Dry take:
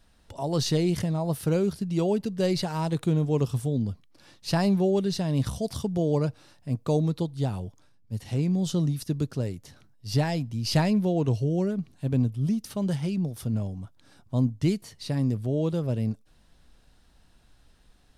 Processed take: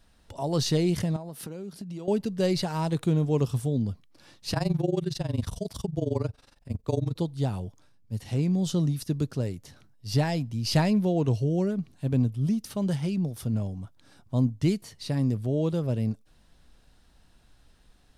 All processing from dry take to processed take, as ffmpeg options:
-filter_complex "[0:a]asettb=1/sr,asplit=3[a][b][c];[a]atrim=end=1.164[d];[b]atrim=start=1.16:end=2.08,asetpts=PTS-STARTPTS,afade=t=in:d=0.004:c=qsin,afade=t=out:st=0.916:d=0.004:c=qsin,lowshelf=f=130:t=q:w=1.5:g=-13,acompressor=threshold=-34dB:ratio=10:attack=3.2:release=140:knee=1:detection=peak[e];[c]atrim=start=2.076[f];[d][e]acrossfade=d=0.004:c1=hsin:c2=qsin[g];[g][f]acrossfade=d=0.004:c1=qsin:c2=hsin,asettb=1/sr,asplit=3[h][i][j];[h]atrim=end=4.534[k];[i]atrim=start=4.53:end=7.16,asetpts=PTS-STARTPTS,afade=t=in:d=0.004:c=qsin,afade=t=out:st=2.626:d=0.004:c=qsin,afreqshift=-26,tremolo=f=22:d=0.889[l];[j]atrim=start=7.156[m];[k][l]acrossfade=d=0.004:c1=hsin:c2=qsin[n];[n][m]acrossfade=d=0.004:c1=qsin:c2=hsin"

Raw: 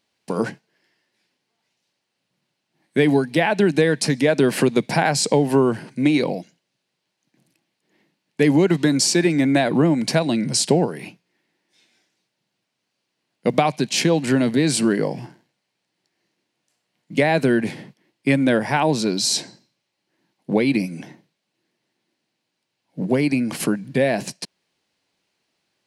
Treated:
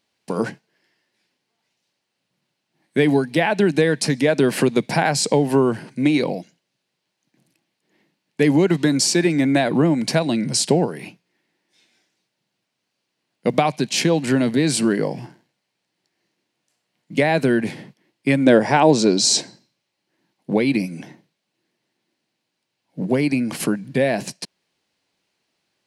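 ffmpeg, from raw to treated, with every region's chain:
-filter_complex "[0:a]asettb=1/sr,asplit=3[a][b][c];[a]atrim=end=18.464[d];[b]atrim=start=18.46:end=19.41,asetpts=PTS-STARTPTS,afade=t=in:d=0.004:c=qsin,afade=t=out:st=0.946:d=0.004:c=qsin,lowpass=f=7.3k:t=q:w=1.8,equalizer=f=440:w=0.62:g=7[e];[c]atrim=start=19.406[f];[d][e]acrossfade=d=0.004:c1=hsin:c2=qsin[g];[g][f]acrossfade=d=0.004:c1=qsin:c2=hsin"

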